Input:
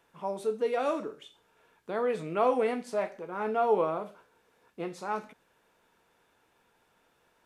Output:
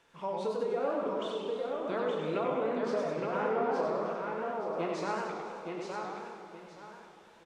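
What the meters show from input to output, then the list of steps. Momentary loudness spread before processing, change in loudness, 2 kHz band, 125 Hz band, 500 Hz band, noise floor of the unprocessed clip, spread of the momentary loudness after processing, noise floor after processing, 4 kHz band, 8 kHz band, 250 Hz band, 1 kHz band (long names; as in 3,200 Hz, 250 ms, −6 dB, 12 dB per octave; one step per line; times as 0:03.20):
11 LU, −3.0 dB, +0.5 dB, +2.5 dB, −1.0 dB, −70 dBFS, 15 LU, −57 dBFS, +3.5 dB, can't be measured, +1.0 dB, −2.0 dB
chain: Bessel low-pass filter 4,500 Hz, order 2
notch filter 760 Hz, Q 17
treble cut that deepens with the level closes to 1,300 Hz, closed at −26 dBFS
high-shelf EQ 3,500 Hz +11.5 dB
downward compressor, threshold −31 dBFS, peak gain reduction 10.5 dB
repeating echo 870 ms, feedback 27%, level −4 dB
four-comb reverb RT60 2.1 s, combs from 32 ms, DRR 3.5 dB
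feedback echo with a swinging delay time 99 ms, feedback 54%, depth 198 cents, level −4.5 dB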